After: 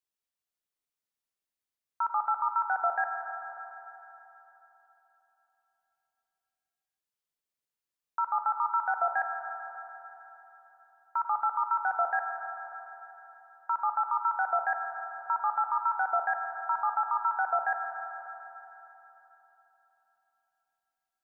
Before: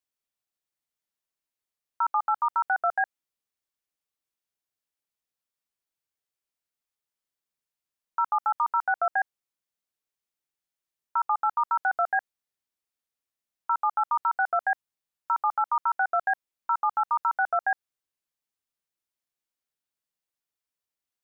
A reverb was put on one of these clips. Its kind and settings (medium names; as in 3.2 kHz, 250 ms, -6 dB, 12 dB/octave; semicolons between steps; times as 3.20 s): Schroeder reverb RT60 3.6 s, combs from 26 ms, DRR 4 dB; trim -4 dB